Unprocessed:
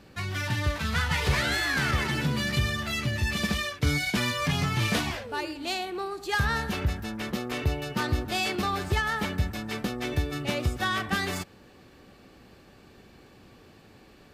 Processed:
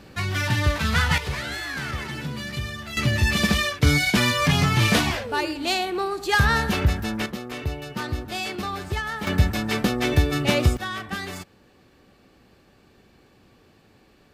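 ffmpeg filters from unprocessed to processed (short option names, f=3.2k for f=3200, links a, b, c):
-af "asetnsamples=n=441:p=0,asendcmd='1.18 volume volume -4dB;2.97 volume volume 7dB;7.26 volume volume -1.5dB;9.27 volume volume 8.5dB;10.77 volume volume -3dB',volume=6dB"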